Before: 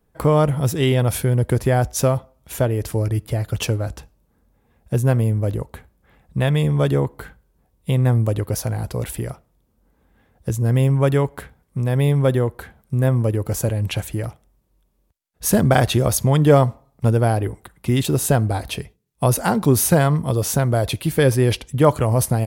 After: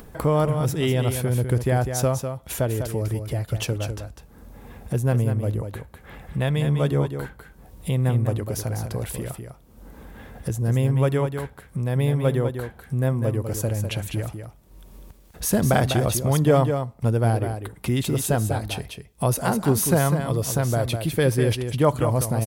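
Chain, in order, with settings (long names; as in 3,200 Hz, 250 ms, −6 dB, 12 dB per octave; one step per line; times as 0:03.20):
upward compression, threshold −20 dBFS
on a send: single-tap delay 200 ms −7.5 dB
on the sum: level −4.5 dB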